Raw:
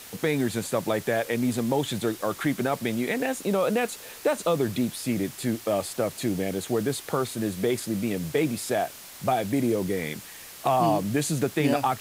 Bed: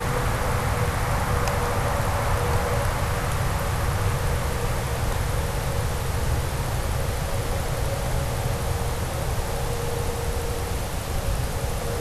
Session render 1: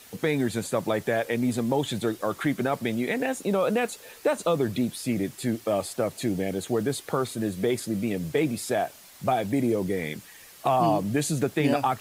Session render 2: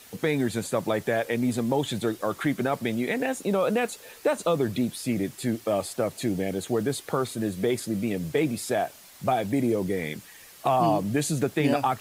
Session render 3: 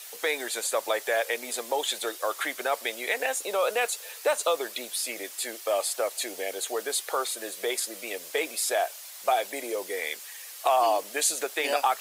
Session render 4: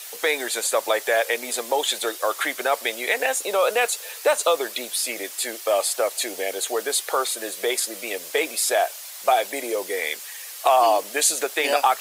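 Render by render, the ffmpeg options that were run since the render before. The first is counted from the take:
-af "afftdn=nr=7:nf=-44"
-af anull
-af "highpass=f=480:w=0.5412,highpass=f=480:w=1.3066,highshelf=f=2.5k:g=8"
-af "volume=5.5dB"

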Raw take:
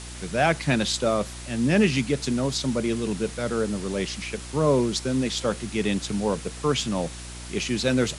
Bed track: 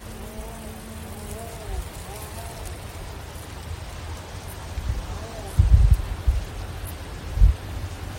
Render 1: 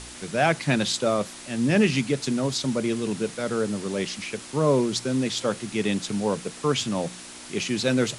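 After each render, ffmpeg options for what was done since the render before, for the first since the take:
-af "bandreject=f=60:t=h:w=4,bandreject=f=120:t=h:w=4,bandreject=f=180:t=h:w=4"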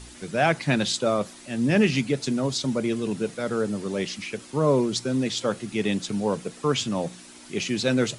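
-af "afftdn=nr=8:nf=-42"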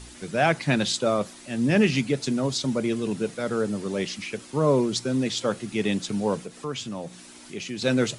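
-filter_complex "[0:a]asettb=1/sr,asplit=3[a][b][c];[a]atrim=end=6.434[d];[b]atrim=start=6.43:end=7.82,asetpts=PTS-STARTPTS,afade=t=in:d=0.004:c=qsin,afade=t=out:st=1.386:d=0.004:c=qsin,acompressor=threshold=-41dB:ratio=1.5:attack=3.2:release=140:knee=1:detection=peak[e];[c]atrim=start=7.816[f];[d][e]acrossfade=d=0.004:c1=hsin:c2=qsin[g];[g][f]acrossfade=d=0.004:c1=qsin:c2=hsin"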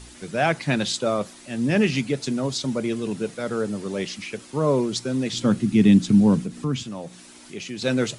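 -filter_complex "[0:a]asettb=1/sr,asplit=3[a][b][c];[a]atrim=end=5.334[d];[b]atrim=start=5.33:end=6.83,asetpts=PTS-STARTPTS,afade=t=in:d=0.004:c=qsin,afade=t=out:st=1.496:d=0.004:c=qsin,lowshelf=f=350:t=q:w=1.5:g=10.5[e];[c]atrim=start=6.826[f];[d][e]acrossfade=d=0.004:c1=hsin:c2=qsin[g];[g][f]acrossfade=d=0.004:c1=qsin:c2=hsin"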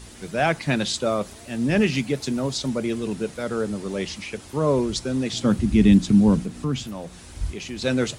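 -filter_complex "[1:a]volume=-12.5dB[a];[0:a][a]amix=inputs=2:normalize=0"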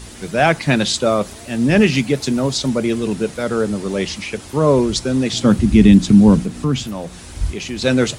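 -af "volume=7dB,alimiter=limit=-1dB:level=0:latency=1"

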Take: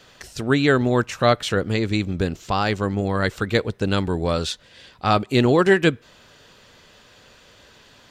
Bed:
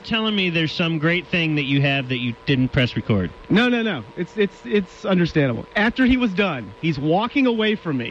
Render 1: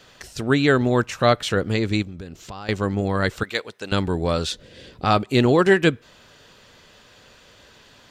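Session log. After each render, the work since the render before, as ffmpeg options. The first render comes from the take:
-filter_complex "[0:a]asettb=1/sr,asplit=3[a][b][c];[a]atrim=end=2.024[d];[b]atrim=start=2.02:end=2.69,asetpts=PTS-STARTPTS,afade=t=in:d=0.004:c=qsin,afade=t=out:st=0.666:d=0.004:c=qsin,acompressor=threshold=-34dB:ratio=4:attack=3.2:release=140:knee=1:detection=peak[e];[c]atrim=start=2.686[f];[d][e]acrossfade=d=0.004:c1=hsin:c2=qsin[g];[g][f]acrossfade=d=0.004:c1=qsin:c2=hsin,asettb=1/sr,asplit=3[h][i][j];[h]atrim=end=3.434[k];[i]atrim=start=3.43:end=3.92,asetpts=PTS-STARTPTS,afade=t=in:d=0.004:c=qsin,afade=t=out:st=0.486:d=0.004:c=qsin,highpass=f=1.2k:p=1[l];[j]atrim=start=3.916[m];[k][l]acrossfade=d=0.004:c1=hsin:c2=qsin[n];[n][m]acrossfade=d=0.004:c1=qsin:c2=hsin,asettb=1/sr,asplit=3[o][p][q];[o]atrim=end=4.514[r];[p]atrim=start=4.51:end=5.05,asetpts=PTS-STARTPTS,afade=t=in:d=0.004:c=qsin,afade=t=out:st=0.536:d=0.004:c=qsin,lowshelf=f=630:t=q:w=1.5:g=9[s];[q]atrim=start=5.046[t];[r][s]acrossfade=d=0.004:c1=hsin:c2=qsin[u];[u][t]acrossfade=d=0.004:c1=qsin:c2=hsin"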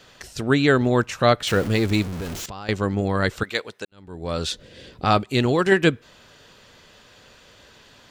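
-filter_complex "[0:a]asettb=1/sr,asplit=3[a][b][c];[a]atrim=end=1.474[d];[b]atrim=start=1.47:end=2.46,asetpts=PTS-STARTPTS,afade=t=in:d=0.004:c=qsin,afade=t=out:st=0.986:d=0.004:c=qsin,aeval=exprs='val(0)+0.5*0.0398*sgn(val(0))':c=same[e];[c]atrim=start=2.456[f];[d][e]acrossfade=d=0.004:c1=hsin:c2=qsin[g];[g][f]acrossfade=d=0.004:c1=qsin:c2=hsin,asettb=1/sr,asplit=3[h][i][j];[h]atrim=end=5.204[k];[i]atrim=start=5.2:end=5.72,asetpts=PTS-STARTPTS,afade=t=in:d=0.004:c=qsin,afade=t=out:st=0.516:d=0.004:c=qsin,equalizer=f=420:w=0.31:g=-4[l];[j]atrim=start=5.716[m];[k][l]acrossfade=d=0.004:c1=hsin:c2=qsin[n];[n][m]acrossfade=d=0.004:c1=qsin:c2=hsin,asplit=2[o][p];[o]atrim=end=3.85,asetpts=PTS-STARTPTS,afade=t=out:st=3.846:d=0.004:c=hsin[q];[p]atrim=start=3.85,asetpts=PTS-STARTPTS,afade=t=in:d=0.62:c=qua[r];[q][r]concat=n=2:v=0:a=1"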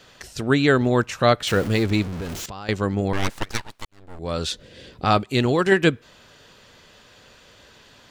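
-filter_complex "[0:a]asettb=1/sr,asplit=3[a][b][c];[a]atrim=end=1.834[d];[b]atrim=start=1.83:end=2.29,asetpts=PTS-STARTPTS,afade=t=in:d=0.004:c=qsin,afade=t=out:st=0.456:d=0.004:c=qsin,highshelf=f=7.2k:g=-8.5[e];[c]atrim=start=2.286[f];[d][e]acrossfade=d=0.004:c1=hsin:c2=qsin[g];[g][f]acrossfade=d=0.004:c1=qsin:c2=hsin,asettb=1/sr,asplit=3[h][i][j];[h]atrim=end=3.134[k];[i]atrim=start=3.13:end=4.19,asetpts=PTS-STARTPTS,afade=t=in:d=0.004:c=qsin,afade=t=out:st=1.056:d=0.004:c=qsin,aeval=exprs='abs(val(0))':c=same[l];[j]atrim=start=4.186[m];[k][l]acrossfade=d=0.004:c1=hsin:c2=qsin[n];[n][m]acrossfade=d=0.004:c1=qsin:c2=hsin"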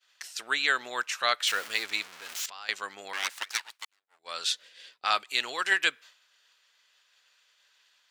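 -af "highpass=1.5k,agate=range=-33dB:threshold=-44dB:ratio=3:detection=peak"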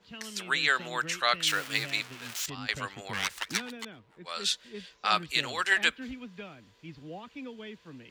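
-filter_complex "[1:a]volume=-24dB[a];[0:a][a]amix=inputs=2:normalize=0"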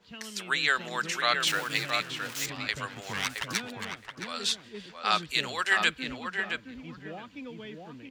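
-filter_complex "[0:a]asplit=2[a][b];[b]adelay=669,lowpass=f=1.9k:p=1,volume=-4dB,asplit=2[c][d];[d]adelay=669,lowpass=f=1.9k:p=1,volume=0.18,asplit=2[e][f];[f]adelay=669,lowpass=f=1.9k:p=1,volume=0.18[g];[a][c][e][g]amix=inputs=4:normalize=0"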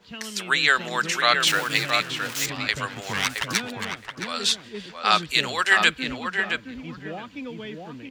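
-af "volume=6.5dB"

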